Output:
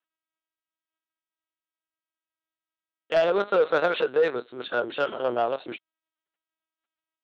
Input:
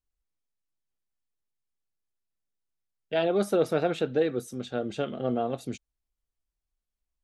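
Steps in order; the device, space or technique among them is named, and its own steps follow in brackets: talking toy (LPC vocoder at 8 kHz pitch kept; high-pass 480 Hz 12 dB/octave; peaking EQ 1.4 kHz +6.5 dB 0.49 oct; saturation -21.5 dBFS, distortion -18 dB); trim +8.5 dB

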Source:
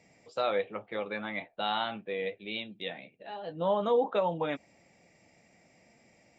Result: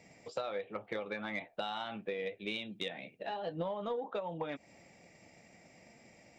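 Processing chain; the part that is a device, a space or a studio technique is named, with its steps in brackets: drum-bus smash (transient shaper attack +6 dB, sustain +1 dB; compression 10:1, threshold -36 dBFS, peak gain reduction 16.5 dB; saturation -27 dBFS, distortion -22 dB); trim +2.5 dB

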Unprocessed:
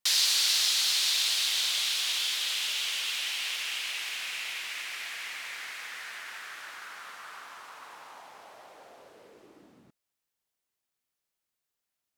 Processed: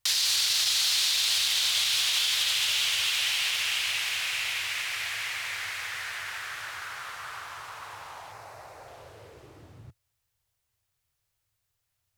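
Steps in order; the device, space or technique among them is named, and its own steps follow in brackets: 8.32–8.88 s: peaking EQ 3.2 kHz -9 dB 0.37 oct; car stereo with a boomy subwoofer (resonant low shelf 150 Hz +13 dB, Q 3; peak limiter -21.5 dBFS, peak gain reduction 9 dB); trim +5.5 dB

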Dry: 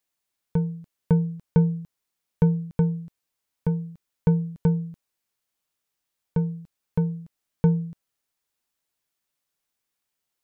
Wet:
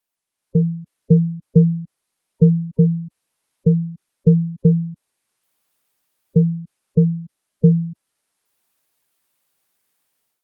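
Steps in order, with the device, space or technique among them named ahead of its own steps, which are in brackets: noise-suppressed video call (high-pass 110 Hz 6 dB/octave; spectral gate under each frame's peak -15 dB strong; level rider gain up to 12.5 dB; Opus 32 kbps 48 kHz)

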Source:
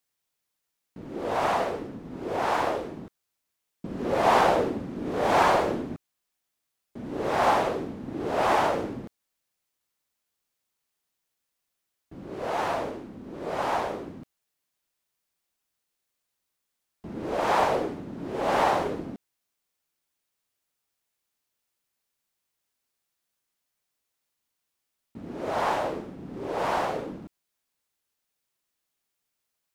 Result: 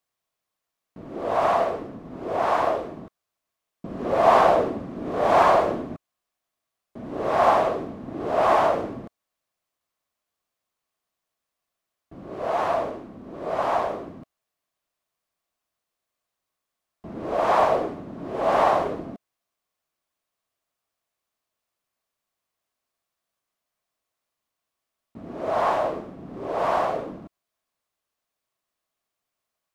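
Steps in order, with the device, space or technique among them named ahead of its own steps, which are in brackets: inside a helmet (treble shelf 4.4 kHz -5.5 dB; small resonant body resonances 660/1100 Hz, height 8 dB, ringing for 20 ms)

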